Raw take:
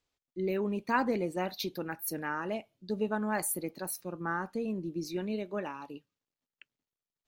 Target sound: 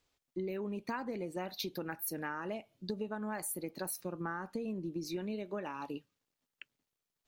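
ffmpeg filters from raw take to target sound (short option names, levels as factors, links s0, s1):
-af "acompressor=threshold=0.01:ratio=10,volume=1.78"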